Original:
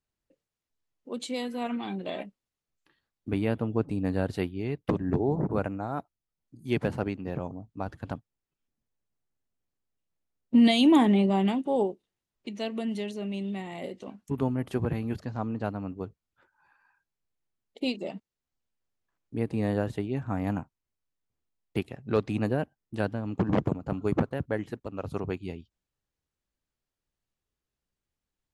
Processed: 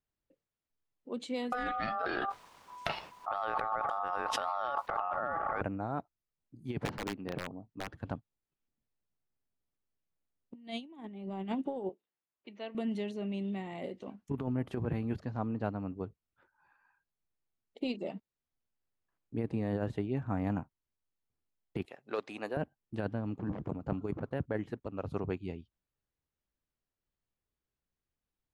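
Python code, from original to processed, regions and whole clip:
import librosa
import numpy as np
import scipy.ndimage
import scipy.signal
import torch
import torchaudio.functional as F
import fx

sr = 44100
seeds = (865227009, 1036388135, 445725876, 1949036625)

y = fx.chain(x, sr, fx.ring_mod(carrier_hz=990.0),
    fx.env_flatten(amount_pct=100), at=(1.52, 5.61))
y = fx.chain(y, sr, fx.lowpass(hz=5300.0, slope=24),
    fx.peak_eq(hz=68.0, db=-9.5, octaves=2.0),
    fx.overflow_wrap(gain_db=24.0), at=(6.85, 7.93))
y = fx.chain(y, sr, fx.highpass(hz=780.0, slope=6),
    fx.air_absorb(metres=220.0), at=(11.89, 12.75))
y = fx.chain(y, sr, fx.highpass(hz=530.0, slope=12),
    fx.high_shelf(hz=4300.0, db=6.5), at=(21.85, 22.57))
y = fx.lowpass(y, sr, hz=2900.0, slope=6)
y = fx.over_compress(y, sr, threshold_db=-28.0, ratio=-0.5)
y = y * librosa.db_to_amplitude(-5.5)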